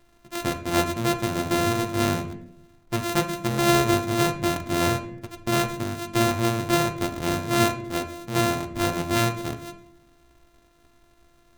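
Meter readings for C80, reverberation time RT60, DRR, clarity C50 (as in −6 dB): 14.0 dB, 0.70 s, 6.5 dB, 11.5 dB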